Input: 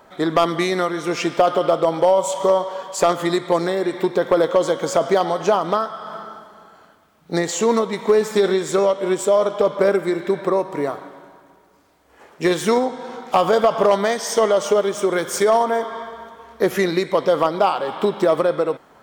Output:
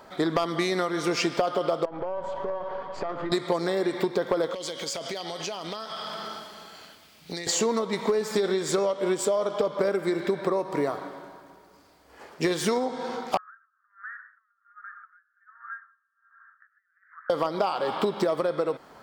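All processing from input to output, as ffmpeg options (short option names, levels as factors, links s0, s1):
-filter_complex "[0:a]asettb=1/sr,asplit=3[s0][s1][s2];[s0]atrim=end=1.854[s3];[s1]atrim=start=1.85:end=3.32,asetpts=PTS-STARTPTS,afade=t=in:d=0.004:c=qsin,afade=t=out:st=1.466:d=0.004:c=qsin,aeval=exprs='if(lt(val(0),0),0.447*val(0),val(0))':c=same,lowpass=1800,acompressor=threshold=0.0398:ratio=5:attack=3.2:release=140:knee=1:detection=peak[s4];[s2]atrim=start=3.316[s5];[s3][s4]acrossfade=d=0.004:c1=hsin:c2=qsin[s6];[s6][s5]acrossfade=d=0.004:c1=qsin:c2=hsin,asettb=1/sr,asplit=3[s7][s8][s9];[s7]atrim=end=4.544[s10];[s8]atrim=start=4.54:end=7.47,asetpts=PTS-STARTPTS,afade=t=in:d=0.004:c=qsin,afade=t=out:st=2.926:d=0.004:c=qsin,highshelf=f=1800:t=q:w=1.5:g=9.5,acompressor=threshold=0.0282:ratio=8:attack=3.2:release=140:knee=1:detection=peak[s11];[s9]atrim=start=7.466[s12];[s10][s11]acrossfade=d=0.004:c1=hsin:c2=qsin[s13];[s13][s12]acrossfade=d=0.004:c1=qsin:c2=hsin,asettb=1/sr,asplit=3[s14][s15][s16];[s14]atrim=end=13.374[s17];[s15]atrim=start=13.37:end=17.3,asetpts=PTS-STARTPTS,afade=t=in:d=0.004:c=qsin,afade=t=out:st=3.926:d=0.004:c=qsin,acompressor=threshold=0.112:ratio=5:attack=3.2:release=140:knee=1:detection=peak,asuperpass=centerf=1500:order=8:qfactor=2.9,aeval=exprs='val(0)*pow(10,-34*(0.5-0.5*cos(2*PI*1.3*n/s))/20)':c=same[s18];[s16]atrim=start=17.296[s19];[s17][s18]acrossfade=d=0.004:c1=hsin:c2=qsin[s20];[s20][s19]acrossfade=d=0.004:c1=qsin:c2=hsin,equalizer=f=4700:t=o:w=0.29:g=7.5,acompressor=threshold=0.0794:ratio=6"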